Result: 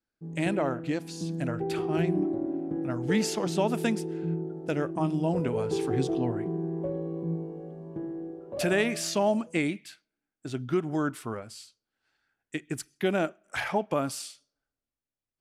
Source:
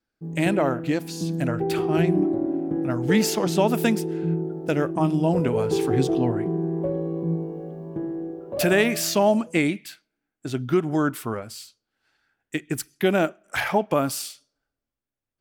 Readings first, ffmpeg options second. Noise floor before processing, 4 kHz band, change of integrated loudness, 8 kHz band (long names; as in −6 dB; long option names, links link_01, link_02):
below −85 dBFS, −6.0 dB, −6.0 dB, −6.5 dB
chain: -af "lowpass=frequency=11000:width=0.5412,lowpass=frequency=11000:width=1.3066,volume=-6dB"